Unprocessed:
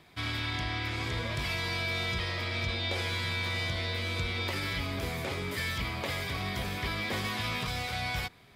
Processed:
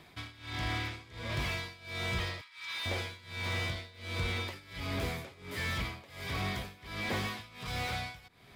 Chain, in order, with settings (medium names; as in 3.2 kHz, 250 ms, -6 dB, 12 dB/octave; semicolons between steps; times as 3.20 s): 2.41–2.86 s: elliptic high-pass 940 Hz; in parallel at -9.5 dB: wavefolder -36 dBFS; on the sum: tremolo 1.4 Hz, depth 93%; slew-rate limiter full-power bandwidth 50 Hz